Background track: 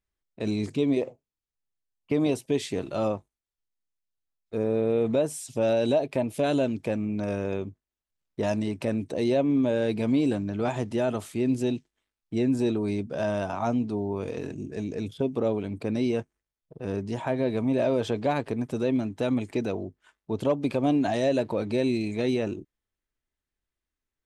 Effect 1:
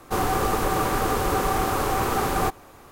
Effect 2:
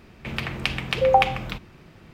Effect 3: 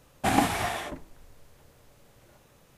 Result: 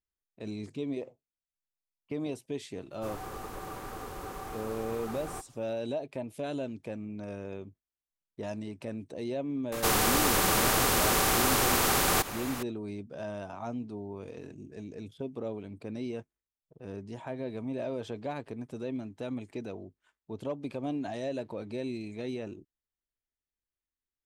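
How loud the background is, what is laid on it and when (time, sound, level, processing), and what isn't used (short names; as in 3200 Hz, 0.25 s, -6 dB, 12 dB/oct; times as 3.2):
background track -10.5 dB
2.91 add 1 -17.5 dB
9.72 add 1 -1.5 dB + spectral compressor 2:1
not used: 2, 3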